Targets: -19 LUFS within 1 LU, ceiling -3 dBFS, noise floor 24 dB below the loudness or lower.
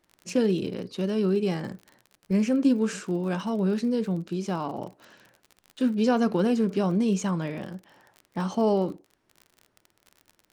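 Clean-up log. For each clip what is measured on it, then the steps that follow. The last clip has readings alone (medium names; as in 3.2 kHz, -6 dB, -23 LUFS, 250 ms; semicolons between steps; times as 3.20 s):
tick rate 39 per s; loudness -26.5 LUFS; peak level -11.5 dBFS; loudness target -19.0 LUFS
-> de-click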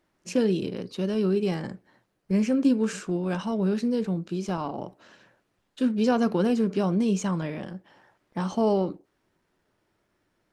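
tick rate 0 per s; loudness -26.5 LUFS; peak level -11.5 dBFS; loudness target -19.0 LUFS
-> trim +7.5 dB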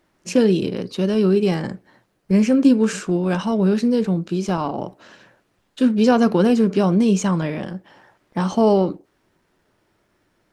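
loudness -19.0 LUFS; peak level -4.0 dBFS; noise floor -67 dBFS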